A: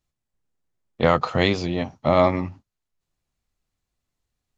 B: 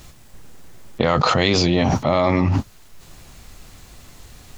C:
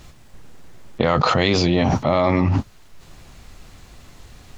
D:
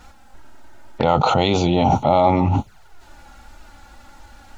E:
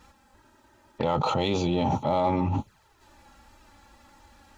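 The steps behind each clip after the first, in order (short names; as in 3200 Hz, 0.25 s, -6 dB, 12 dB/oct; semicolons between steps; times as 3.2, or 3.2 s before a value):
dynamic EQ 4800 Hz, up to +5 dB, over -41 dBFS, Q 0.88; fast leveller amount 100%; gain -3 dB
high shelf 7200 Hz -9.5 dB
envelope flanger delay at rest 4.5 ms, full sweep at -17.5 dBFS; small resonant body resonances 840/1400 Hz, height 14 dB, ringing for 20 ms
notch comb 720 Hz; in parallel at -10.5 dB: overloaded stage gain 19.5 dB; on the sum: gain -8.5 dB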